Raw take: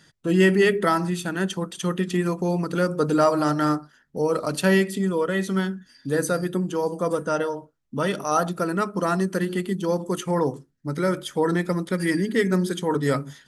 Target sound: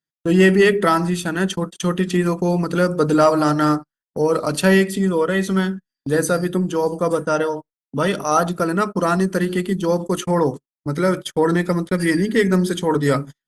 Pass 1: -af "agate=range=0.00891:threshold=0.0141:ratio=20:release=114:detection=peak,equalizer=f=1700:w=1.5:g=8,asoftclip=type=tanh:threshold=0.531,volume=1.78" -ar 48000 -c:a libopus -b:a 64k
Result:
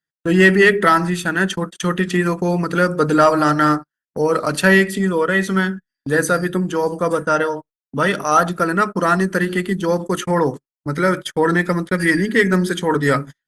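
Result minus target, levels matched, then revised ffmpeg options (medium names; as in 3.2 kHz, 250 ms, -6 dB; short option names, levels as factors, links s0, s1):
2 kHz band +5.0 dB
-af "agate=range=0.00891:threshold=0.0141:ratio=20:release=114:detection=peak,asoftclip=type=tanh:threshold=0.531,volume=1.78" -ar 48000 -c:a libopus -b:a 64k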